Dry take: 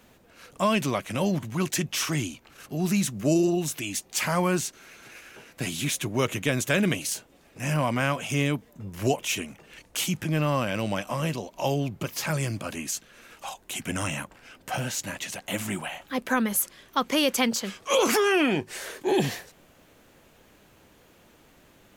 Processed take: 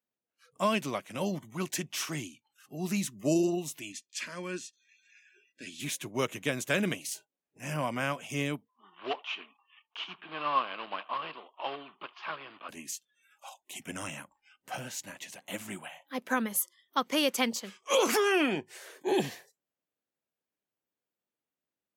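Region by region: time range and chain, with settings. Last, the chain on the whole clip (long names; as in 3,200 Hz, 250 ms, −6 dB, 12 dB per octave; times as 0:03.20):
0:03.92–0:05.80: low-pass filter 6,500 Hz + phaser with its sweep stopped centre 330 Hz, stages 4 + comb filter 1.2 ms, depth 35%
0:08.69–0:12.69: one scale factor per block 3 bits + loudspeaker in its box 460–3,400 Hz, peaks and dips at 550 Hz −6 dB, 1,100 Hz +9 dB, 2,000 Hz −4 dB, 3,000 Hz +4 dB + single-tap delay 81 ms −20.5 dB
whole clip: noise reduction from a noise print of the clip's start 26 dB; Bessel high-pass filter 170 Hz, order 2; expander for the loud parts 1.5 to 1, over −37 dBFS; level −2.5 dB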